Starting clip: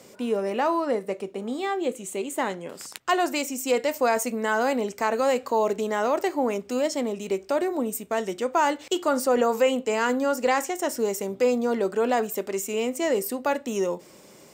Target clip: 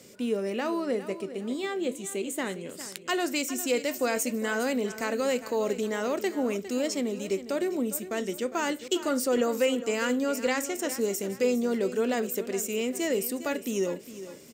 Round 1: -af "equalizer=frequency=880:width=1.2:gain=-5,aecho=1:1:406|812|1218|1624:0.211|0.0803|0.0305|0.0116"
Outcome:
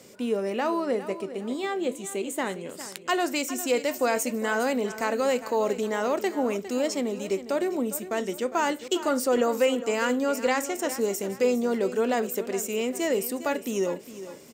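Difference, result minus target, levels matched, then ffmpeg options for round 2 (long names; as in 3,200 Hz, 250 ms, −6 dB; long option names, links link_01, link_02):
1,000 Hz band +3.5 dB
-af "equalizer=frequency=880:width=1.2:gain=-12,aecho=1:1:406|812|1218|1624:0.211|0.0803|0.0305|0.0116"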